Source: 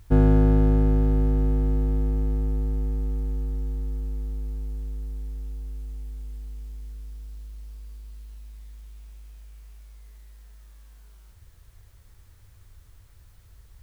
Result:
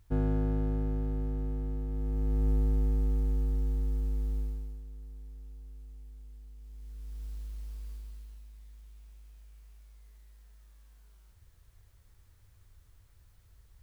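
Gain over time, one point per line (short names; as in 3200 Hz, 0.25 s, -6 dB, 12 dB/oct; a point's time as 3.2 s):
1.88 s -11.5 dB
2.49 s -1 dB
4.4 s -1 dB
4.83 s -12.5 dB
6.57 s -12.5 dB
7.25 s -0.5 dB
7.91 s -0.5 dB
8.49 s -8 dB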